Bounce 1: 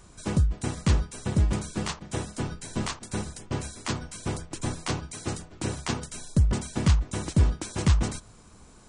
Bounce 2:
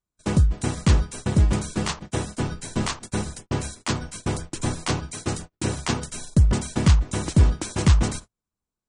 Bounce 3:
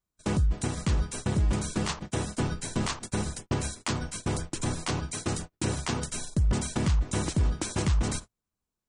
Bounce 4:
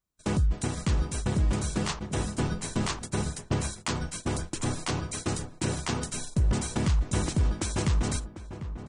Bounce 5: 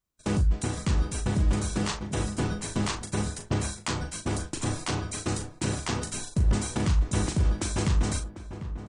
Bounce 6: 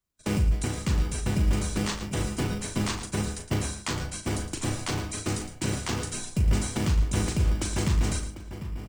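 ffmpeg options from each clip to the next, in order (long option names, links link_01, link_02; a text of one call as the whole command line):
ffmpeg -i in.wav -af "agate=range=-42dB:threshold=-40dB:ratio=16:detection=peak,acontrast=21" out.wav
ffmpeg -i in.wav -af "alimiter=limit=-18dB:level=0:latency=1:release=108" out.wav
ffmpeg -i in.wav -filter_complex "[0:a]asplit=2[link_01][link_02];[link_02]adelay=747,lowpass=frequency=1400:poles=1,volume=-11dB,asplit=2[link_03][link_04];[link_04]adelay=747,lowpass=frequency=1400:poles=1,volume=0.36,asplit=2[link_05][link_06];[link_06]adelay=747,lowpass=frequency=1400:poles=1,volume=0.36,asplit=2[link_07][link_08];[link_08]adelay=747,lowpass=frequency=1400:poles=1,volume=0.36[link_09];[link_01][link_03][link_05][link_07][link_09]amix=inputs=5:normalize=0" out.wav
ffmpeg -i in.wav -filter_complex "[0:a]asplit=2[link_01][link_02];[link_02]adelay=39,volume=-8dB[link_03];[link_01][link_03]amix=inputs=2:normalize=0" out.wav
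ffmpeg -i in.wav -filter_complex "[0:a]acrossover=split=110|810[link_01][link_02][link_03];[link_02]acrusher=samples=17:mix=1:aa=0.000001[link_04];[link_01][link_04][link_03]amix=inputs=3:normalize=0,aecho=1:1:112:0.266" out.wav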